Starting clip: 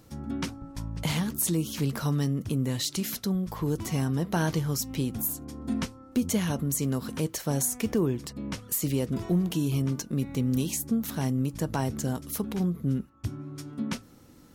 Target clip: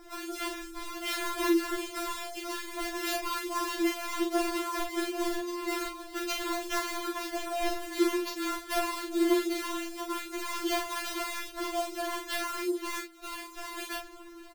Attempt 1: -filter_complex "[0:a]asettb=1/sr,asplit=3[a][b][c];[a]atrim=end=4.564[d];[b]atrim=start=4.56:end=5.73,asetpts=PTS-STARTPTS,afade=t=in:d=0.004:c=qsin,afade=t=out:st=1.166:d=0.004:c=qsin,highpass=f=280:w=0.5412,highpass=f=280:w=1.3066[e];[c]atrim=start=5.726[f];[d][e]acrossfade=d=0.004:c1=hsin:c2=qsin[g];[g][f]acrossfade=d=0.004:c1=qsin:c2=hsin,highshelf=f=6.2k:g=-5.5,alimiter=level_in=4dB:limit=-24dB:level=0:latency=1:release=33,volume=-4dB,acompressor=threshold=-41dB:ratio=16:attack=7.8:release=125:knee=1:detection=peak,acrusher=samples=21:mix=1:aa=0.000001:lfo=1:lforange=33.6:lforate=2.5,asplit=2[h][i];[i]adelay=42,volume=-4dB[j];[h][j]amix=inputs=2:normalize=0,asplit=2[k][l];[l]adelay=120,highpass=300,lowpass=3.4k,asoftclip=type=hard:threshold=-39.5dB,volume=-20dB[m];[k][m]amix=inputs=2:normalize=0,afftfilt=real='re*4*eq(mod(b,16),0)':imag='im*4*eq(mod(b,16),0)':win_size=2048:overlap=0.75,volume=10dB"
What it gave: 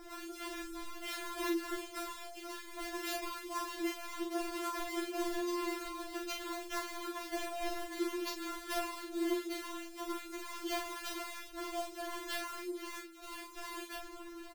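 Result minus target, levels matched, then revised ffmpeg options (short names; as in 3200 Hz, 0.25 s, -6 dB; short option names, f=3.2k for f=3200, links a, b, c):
compressor: peak gain reduction +11 dB
-filter_complex "[0:a]asettb=1/sr,asplit=3[a][b][c];[a]atrim=end=4.564[d];[b]atrim=start=4.56:end=5.73,asetpts=PTS-STARTPTS,afade=t=in:d=0.004:c=qsin,afade=t=out:st=1.166:d=0.004:c=qsin,highpass=f=280:w=0.5412,highpass=f=280:w=1.3066[e];[c]atrim=start=5.726[f];[d][e]acrossfade=d=0.004:c1=hsin:c2=qsin[g];[g][f]acrossfade=d=0.004:c1=qsin:c2=hsin,highshelf=f=6.2k:g=-5.5,alimiter=level_in=4dB:limit=-24dB:level=0:latency=1:release=33,volume=-4dB,acrusher=samples=21:mix=1:aa=0.000001:lfo=1:lforange=33.6:lforate=2.5,asplit=2[h][i];[i]adelay=42,volume=-4dB[j];[h][j]amix=inputs=2:normalize=0,asplit=2[k][l];[l]adelay=120,highpass=300,lowpass=3.4k,asoftclip=type=hard:threshold=-39.5dB,volume=-20dB[m];[k][m]amix=inputs=2:normalize=0,afftfilt=real='re*4*eq(mod(b,16),0)':imag='im*4*eq(mod(b,16),0)':win_size=2048:overlap=0.75,volume=10dB"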